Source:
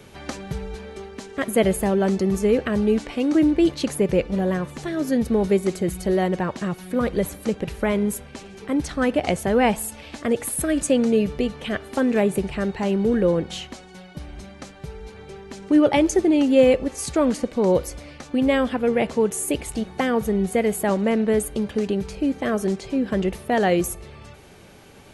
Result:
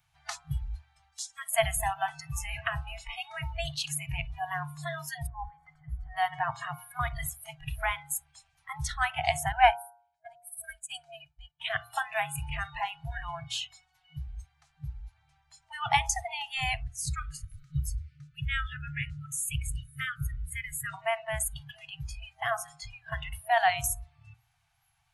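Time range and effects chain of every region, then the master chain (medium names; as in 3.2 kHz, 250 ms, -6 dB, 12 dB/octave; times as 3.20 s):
1.12–1.52 s: low-pass 10 kHz + tone controls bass -8 dB, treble +13 dB + compression 10:1, threshold -29 dBFS
5.27–6.17 s: comb 3.9 ms, depth 50% + compression, threshold -22 dBFS + Savitzky-Golay filter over 41 samples
9.52–11.60 s: comb 1.3 ms, depth 61% + delay 109 ms -17 dB + upward expansion 2.5:1, over -34 dBFS
16.83–20.94 s: brick-wall FIR band-stop 290–1200 Hz + tilt shelf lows +5 dB, about 770 Hz + delay 509 ms -22 dB
whole clip: spectral noise reduction 23 dB; de-hum 118.2 Hz, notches 13; FFT band-reject 160–650 Hz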